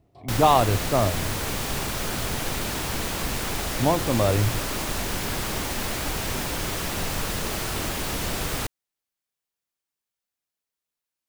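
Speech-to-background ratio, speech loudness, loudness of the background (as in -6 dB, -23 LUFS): 4.5 dB, -23.5 LUFS, -28.0 LUFS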